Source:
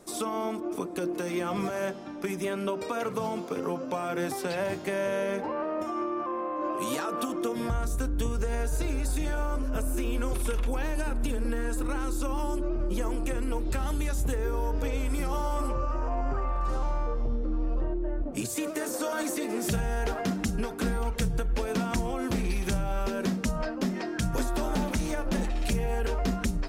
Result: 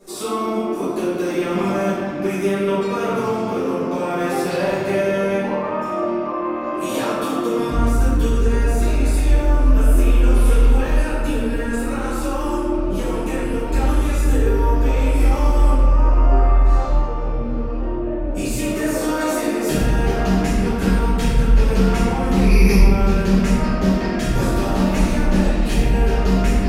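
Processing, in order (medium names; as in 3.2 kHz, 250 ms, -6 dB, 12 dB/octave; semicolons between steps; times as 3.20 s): 22.42–22.90 s: rippled EQ curve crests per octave 0.85, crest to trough 18 dB; band-passed feedback delay 792 ms, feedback 76%, band-pass 2.5 kHz, level -19 dB; reverberation RT60 2.1 s, pre-delay 5 ms, DRR -14 dB; trim -4.5 dB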